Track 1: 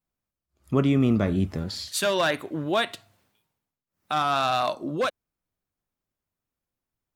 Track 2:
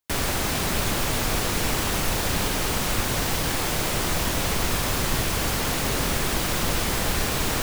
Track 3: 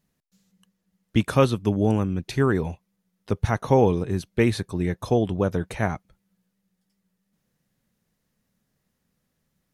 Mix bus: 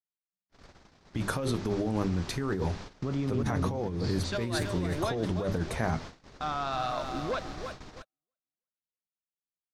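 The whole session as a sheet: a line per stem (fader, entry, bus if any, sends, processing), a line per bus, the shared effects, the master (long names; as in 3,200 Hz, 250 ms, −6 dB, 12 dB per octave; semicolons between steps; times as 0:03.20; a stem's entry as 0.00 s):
−8.5 dB, 2.30 s, bus A, no send, echo send −8.5 dB, high-pass filter 62 Hz 6 dB per octave; parametric band 83 Hz +13.5 dB 0.82 octaves
−18.5 dB, 0.40 s, bus A, no send, no echo send, no processing
+2.5 dB, 0.00 s, no bus, no send, no echo send, mains-hum notches 50/100/150/200/250/300/350/400 Hz; brickwall limiter −15.5 dBFS, peak gain reduction 10.5 dB; flanger 0.26 Hz, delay 5.6 ms, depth 7.6 ms, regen +61%
bus A: 0.0 dB, low-pass filter 5,700 Hz 24 dB per octave; brickwall limiter −24.5 dBFS, peak gain reduction 8 dB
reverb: not used
echo: repeating echo 326 ms, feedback 38%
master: noise gate −41 dBFS, range −40 dB; parametric band 2,800 Hz −5 dB 0.8 octaves; compressor whose output falls as the input rises −29 dBFS, ratio −1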